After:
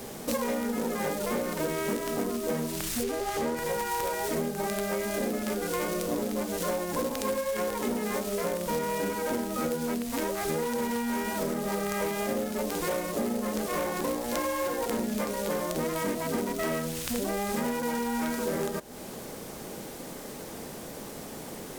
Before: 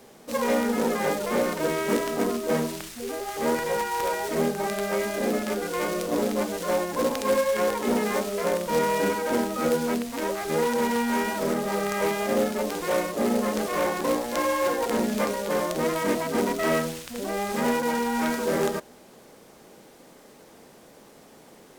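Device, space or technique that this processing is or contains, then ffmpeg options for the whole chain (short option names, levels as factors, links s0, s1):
ASMR close-microphone chain: -filter_complex "[0:a]asettb=1/sr,asplit=3[s0][s1][s2];[s0]atrim=end=3.034[s3];[s1]atrim=start=3.03:end=3.57,asetpts=PTS-STARTPTS,afade=t=in:d=0.004:c=qsin,afade=t=out:st=0.536:d=0.004:c=qsin,highshelf=f=8000:g=-9[s4];[s2]atrim=start=3.566[s5];[s3][s4]acrossfade=d=0.004:c1=hsin:c2=qsin[s6];[s6][s5]acrossfade=d=0.004:c1=qsin:c2=hsin,lowshelf=f=200:g=7.5,acompressor=threshold=0.0158:ratio=8,highshelf=f=7200:g=7.5,volume=2.51"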